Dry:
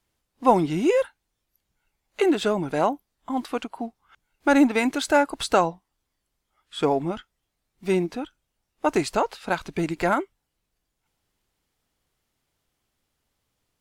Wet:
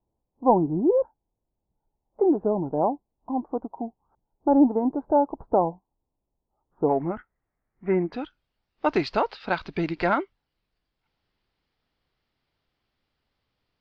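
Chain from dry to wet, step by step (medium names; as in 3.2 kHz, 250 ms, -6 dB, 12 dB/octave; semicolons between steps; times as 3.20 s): elliptic low-pass 920 Hz, stop band 70 dB, from 6.88 s 2 kHz, from 8.12 s 4.8 kHz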